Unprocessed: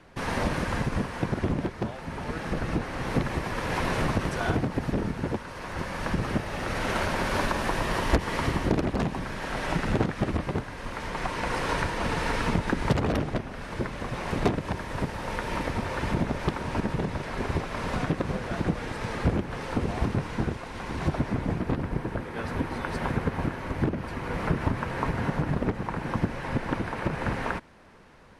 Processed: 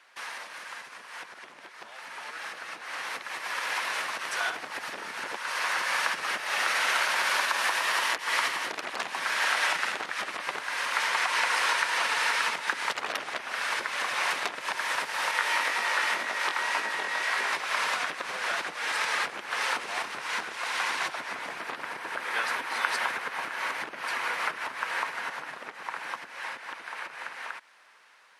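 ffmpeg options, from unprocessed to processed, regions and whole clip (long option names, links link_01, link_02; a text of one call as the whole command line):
ffmpeg -i in.wav -filter_complex "[0:a]asettb=1/sr,asplit=3[link_01][link_02][link_03];[link_01]atrim=end=15.314[link_04];[link_02]atrim=start=15.31:end=17.53,asetpts=PTS-STARTPTS,afade=type=in:duration=0.004:curve=qsin,afade=type=out:start_time=2.216:duration=0.004:curve=qsin,highpass=220,aeval=exprs='val(0)+0.00708*sin(2*PI*1900*n/s)':channel_layout=same,flanger=delay=18.5:depth=4.8:speed=1.9[link_05];[link_03]atrim=start=17.526[link_06];[link_04][link_05]acrossfade=duration=0.004:curve1=hsin:curve2=qsin[link_07];[link_07][link_06]acrossfade=duration=0.004:curve1=qsin:curve2=hsin,acompressor=threshold=-31dB:ratio=10,highpass=1300,dynaudnorm=framelen=680:gausssize=11:maxgain=12.5dB,volume=2dB" out.wav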